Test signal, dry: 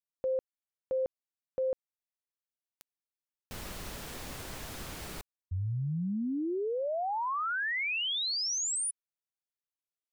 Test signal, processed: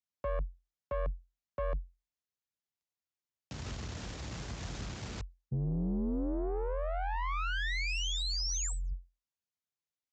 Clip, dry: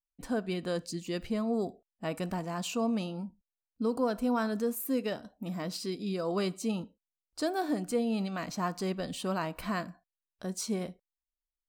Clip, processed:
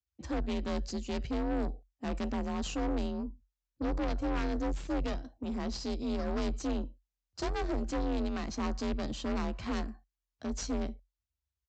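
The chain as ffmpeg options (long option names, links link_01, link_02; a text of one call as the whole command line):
ffmpeg -i in.wav -af "aeval=exprs='0.126*(cos(1*acos(clip(val(0)/0.126,-1,1)))-cos(1*PI/2))+0.0158*(cos(2*acos(clip(val(0)/0.126,-1,1)))-cos(2*PI/2))+0.0501*(cos(4*acos(clip(val(0)/0.126,-1,1)))-cos(4*PI/2))':channel_layout=same,afreqshift=44,bass=frequency=250:gain=7,treble=frequency=4000:gain=2,aresample=16000,asoftclip=type=tanh:threshold=-26dB,aresample=44100,volume=-2.5dB" out.wav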